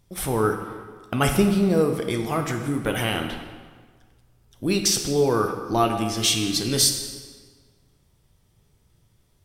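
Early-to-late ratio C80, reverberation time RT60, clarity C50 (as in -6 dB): 8.0 dB, 1.6 s, 6.5 dB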